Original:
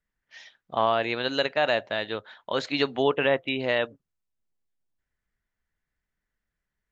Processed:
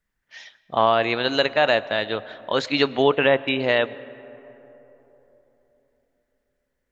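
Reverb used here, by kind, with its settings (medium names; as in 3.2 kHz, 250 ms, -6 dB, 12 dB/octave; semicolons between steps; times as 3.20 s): algorithmic reverb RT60 3.8 s, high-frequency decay 0.35×, pre-delay 75 ms, DRR 18.5 dB; trim +5 dB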